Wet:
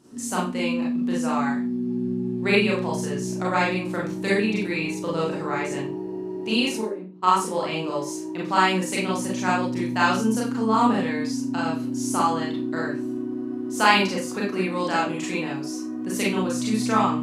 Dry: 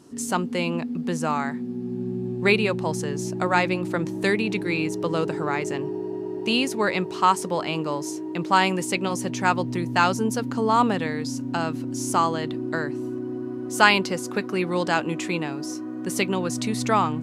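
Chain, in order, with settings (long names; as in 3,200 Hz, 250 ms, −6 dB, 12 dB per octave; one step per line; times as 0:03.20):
0:06.80–0:07.22: resonant band-pass 490 Hz → 140 Hz, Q 5
four-comb reverb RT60 0.31 s, combs from 29 ms, DRR −5 dB
level −6.5 dB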